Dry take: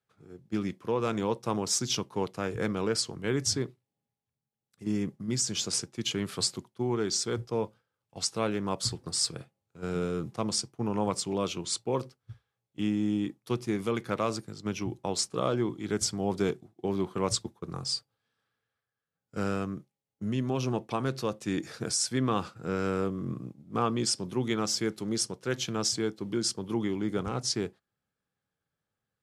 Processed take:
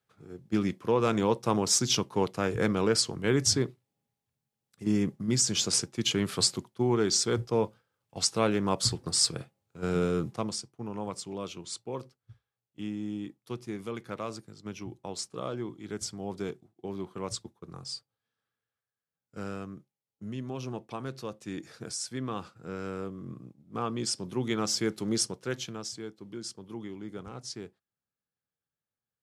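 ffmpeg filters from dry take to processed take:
-af "volume=12.5dB,afade=t=out:st=10.19:d=0.4:silence=0.298538,afade=t=in:st=23.56:d=1.59:silence=0.354813,afade=t=out:st=25.15:d=0.68:silence=0.251189"

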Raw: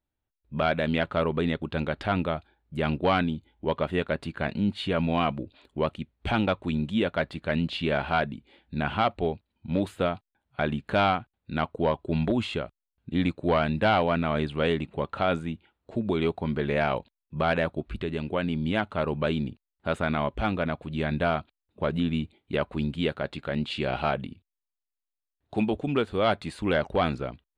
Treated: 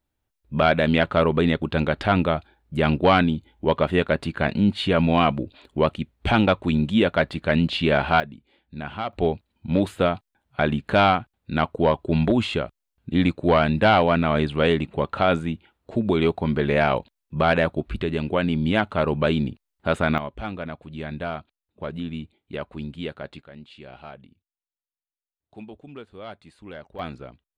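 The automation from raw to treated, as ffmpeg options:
-af "asetnsamples=n=441:p=0,asendcmd='8.2 volume volume -5dB;9.13 volume volume 5.5dB;20.18 volume volume -4.5dB;23.42 volume volume -14.5dB;26.99 volume volume -7dB',volume=6.5dB"

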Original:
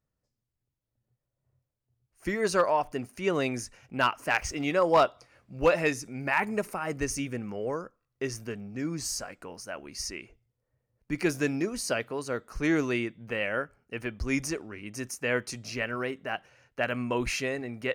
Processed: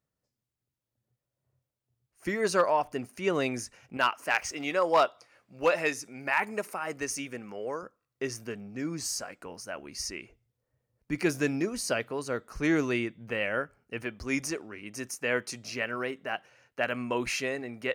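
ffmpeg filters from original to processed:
-af "asetnsamples=n=441:p=0,asendcmd='3.97 highpass f 460;7.83 highpass f 160;9.46 highpass f 50;14.04 highpass f 210',highpass=f=120:p=1"

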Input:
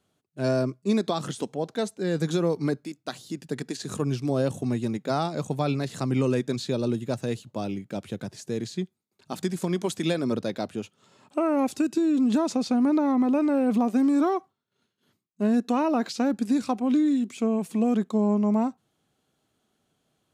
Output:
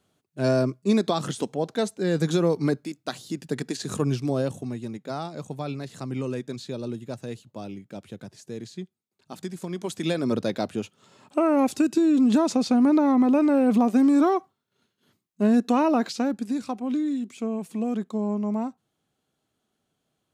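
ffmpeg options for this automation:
-af "volume=11.5dB,afade=t=out:st=4.07:d=0.65:silence=0.375837,afade=t=in:st=9.72:d=0.74:silence=0.354813,afade=t=out:st=15.89:d=0.57:silence=0.446684"

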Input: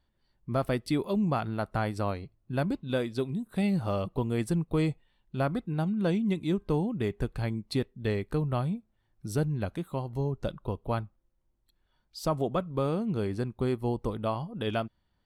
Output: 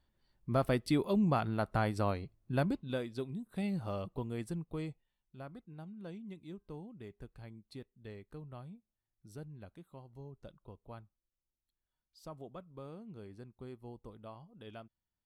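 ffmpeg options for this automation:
-af "volume=-2dB,afade=t=out:st=2.57:d=0.44:silence=0.473151,afade=t=out:st=4.05:d=1.33:silence=0.298538"

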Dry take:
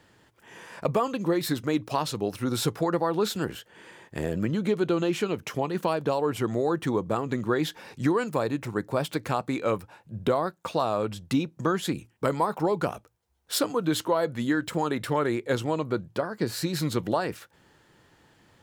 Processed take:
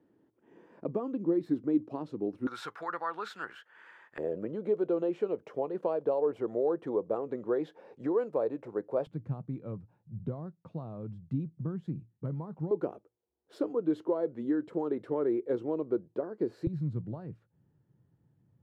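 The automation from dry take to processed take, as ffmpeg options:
-af "asetnsamples=n=441:p=0,asendcmd='2.47 bandpass f 1400;4.18 bandpass f 490;9.07 bandpass f 140;12.71 bandpass f 380;16.67 bandpass f 130',bandpass=f=300:t=q:w=2.3:csg=0"

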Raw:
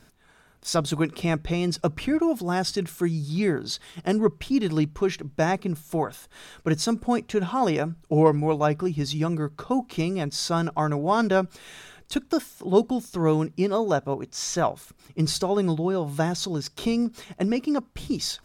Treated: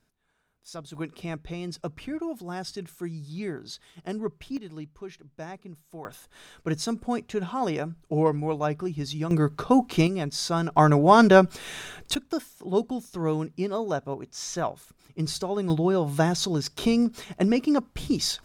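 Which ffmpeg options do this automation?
-af "asetnsamples=n=441:p=0,asendcmd='0.95 volume volume -9.5dB;4.57 volume volume -16dB;6.05 volume volume -4.5dB;9.31 volume volume 5dB;10.07 volume volume -1.5dB;10.76 volume volume 6.5dB;12.15 volume volume -5dB;15.7 volume volume 2dB',volume=-16dB"

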